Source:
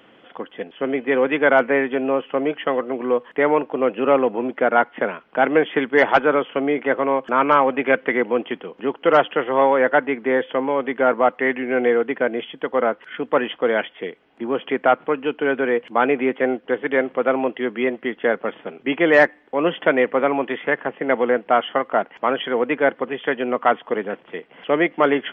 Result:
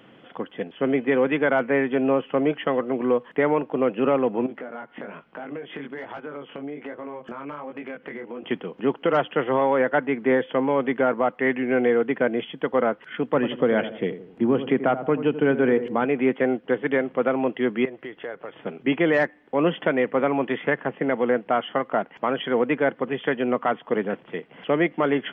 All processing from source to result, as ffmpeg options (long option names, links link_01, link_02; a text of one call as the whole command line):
ffmpeg -i in.wav -filter_complex "[0:a]asettb=1/sr,asplit=3[link_01][link_02][link_03];[link_01]atrim=end=4.464[link_04];[link_02]atrim=start=4.46:end=8.44,asetpts=PTS-STARTPTS,afade=type=in:duration=0.004:curve=qsin,afade=type=out:start_time=3.976:duration=0.004:curve=qsin,flanger=delay=18:depth=4:speed=1.2,acompressor=threshold=-32dB:ratio=6:attack=3.2:release=140:knee=1:detection=peak[link_05];[link_03]atrim=start=8.436[link_06];[link_04][link_05]acrossfade=duration=0.004:curve1=hsin:curve2=qsin[link_07];[link_07][link_06]acrossfade=duration=0.004:curve1=qsin:curve2=hsin,asettb=1/sr,asplit=3[link_08][link_09][link_10];[link_08]atrim=end=13.344[link_11];[link_09]atrim=start=13.34:end=16.05,asetpts=PTS-STARTPTS,afade=type=in:duration=0.004:curve=qsin,afade=type=out:start_time=2.706:duration=0.004:curve=qsin,lowshelf=frequency=330:gain=8,asplit=2[link_12][link_13];[link_13]adelay=85,lowpass=frequency=970:poles=1,volume=-11dB,asplit=2[link_14][link_15];[link_15]adelay=85,lowpass=frequency=970:poles=1,volume=0.48,asplit=2[link_16][link_17];[link_17]adelay=85,lowpass=frequency=970:poles=1,volume=0.48,asplit=2[link_18][link_19];[link_19]adelay=85,lowpass=frequency=970:poles=1,volume=0.48,asplit=2[link_20][link_21];[link_21]adelay=85,lowpass=frequency=970:poles=1,volume=0.48[link_22];[link_12][link_14][link_16][link_18][link_20][link_22]amix=inputs=6:normalize=0,atrim=end_sample=119511[link_23];[link_10]atrim=start=16.046[link_24];[link_11][link_23]acrossfade=duration=0.004:curve1=hsin:curve2=qsin[link_25];[link_25][link_24]acrossfade=duration=0.004:curve1=qsin:curve2=hsin,asettb=1/sr,asplit=3[link_26][link_27][link_28];[link_26]atrim=end=17.854[link_29];[link_27]atrim=start=17.85:end=18.62,asetpts=PTS-STARTPTS,afade=type=in:duration=0.004:curve=qsin,afade=type=out:start_time=0.766:duration=0.004:curve=qsin,equalizer=frequency=220:width_type=o:width=0.45:gain=-13,acompressor=threshold=-35dB:ratio=2.5:attack=3.2:release=140:knee=1:detection=peak[link_30];[link_28]atrim=start=18.616[link_31];[link_29][link_30]acrossfade=duration=0.004:curve1=hsin:curve2=qsin[link_32];[link_32][link_31]acrossfade=duration=0.004:curve1=qsin:curve2=hsin,equalizer=frequency=130:width_type=o:width=1.8:gain=9.5,alimiter=limit=-8.5dB:level=0:latency=1:release=320,volume=-2dB" out.wav